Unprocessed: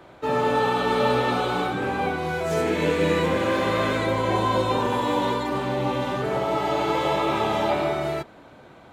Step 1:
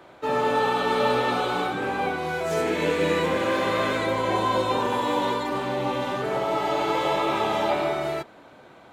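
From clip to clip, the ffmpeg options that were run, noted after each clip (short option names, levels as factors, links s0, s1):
-af "lowshelf=f=170:g=-9"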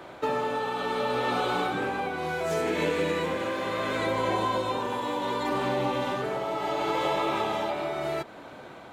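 -af "acompressor=threshold=0.0355:ratio=5,tremolo=f=0.7:d=0.36,volume=1.78"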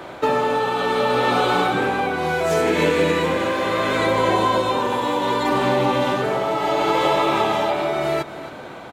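-af "aecho=1:1:267:0.188,volume=2.66"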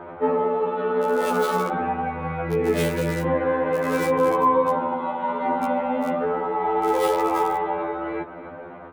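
-filter_complex "[0:a]acrossover=split=2000[s0][s1];[s1]acrusher=bits=3:mix=0:aa=0.000001[s2];[s0][s2]amix=inputs=2:normalize=0,afftfilt=real='re*2*eq(mod(b,4),0)':imag='im*2*eq(mod(b,4),0)':win_size=2048:overlap=0.75"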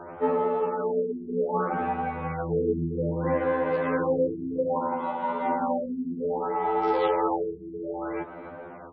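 -af "afftfilt=real='re*lt(b*sr/1024,400*pow(5800/400,0.5+0.5*sin(2*PI*0.62*pts/sr)))':imag='im*lt(b*sr/1024,400*pow(5800/400,0.5+0.5*sin(2*PI*0.62*pts/sr)))':win_size=1024:overlap=0.75,volume=0.708"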